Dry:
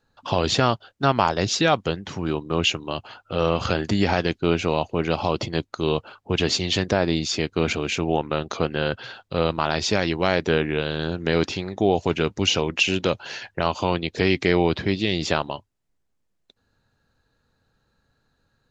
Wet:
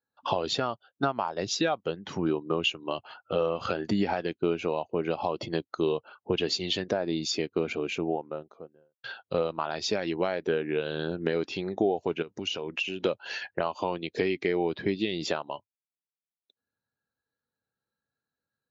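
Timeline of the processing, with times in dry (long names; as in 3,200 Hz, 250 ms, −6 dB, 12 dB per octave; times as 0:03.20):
0:07.26–0:09.04: fade out and dull
0:12.22–0:13.05: downward compressor 8 to 1, threshold −28 dBFS
whole clip: high-pass filter 280 Hz 6 dB per octave; downward compressor 6 to 1, threshold −28 dBFS; every bin expanded away from the loudest bin 1.5 to 1; level +2 dB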